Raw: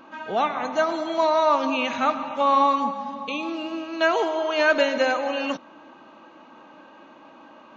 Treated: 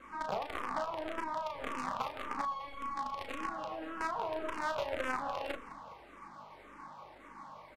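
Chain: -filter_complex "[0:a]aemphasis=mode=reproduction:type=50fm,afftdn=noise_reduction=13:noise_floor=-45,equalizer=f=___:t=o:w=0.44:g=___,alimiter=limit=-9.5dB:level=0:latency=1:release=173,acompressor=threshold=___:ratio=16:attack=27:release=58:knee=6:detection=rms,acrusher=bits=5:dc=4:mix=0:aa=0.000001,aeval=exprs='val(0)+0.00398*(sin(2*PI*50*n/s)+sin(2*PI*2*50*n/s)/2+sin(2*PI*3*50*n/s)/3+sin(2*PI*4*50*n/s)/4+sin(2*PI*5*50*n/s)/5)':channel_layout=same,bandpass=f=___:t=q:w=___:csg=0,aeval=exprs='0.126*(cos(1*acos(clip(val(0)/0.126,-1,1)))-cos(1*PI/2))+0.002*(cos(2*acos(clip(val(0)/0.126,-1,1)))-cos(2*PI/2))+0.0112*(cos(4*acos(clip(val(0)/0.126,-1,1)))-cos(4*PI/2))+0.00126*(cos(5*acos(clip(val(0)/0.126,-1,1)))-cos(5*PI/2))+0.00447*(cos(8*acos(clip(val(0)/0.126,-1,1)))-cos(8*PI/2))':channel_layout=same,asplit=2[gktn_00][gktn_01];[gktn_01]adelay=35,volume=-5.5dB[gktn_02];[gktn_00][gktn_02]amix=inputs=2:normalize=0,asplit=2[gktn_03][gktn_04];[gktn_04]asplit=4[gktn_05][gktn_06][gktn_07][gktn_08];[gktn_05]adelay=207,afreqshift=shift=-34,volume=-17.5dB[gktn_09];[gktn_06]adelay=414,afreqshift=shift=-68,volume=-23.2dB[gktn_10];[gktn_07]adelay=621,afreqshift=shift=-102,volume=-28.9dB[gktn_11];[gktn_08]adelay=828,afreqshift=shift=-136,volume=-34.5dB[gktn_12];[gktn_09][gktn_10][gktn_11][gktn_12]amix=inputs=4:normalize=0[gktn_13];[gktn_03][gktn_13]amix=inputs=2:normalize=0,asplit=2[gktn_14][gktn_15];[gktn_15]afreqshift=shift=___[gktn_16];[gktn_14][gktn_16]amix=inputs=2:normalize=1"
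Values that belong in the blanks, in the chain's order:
1100, 14, -30dB, 760, 0.68, -1.8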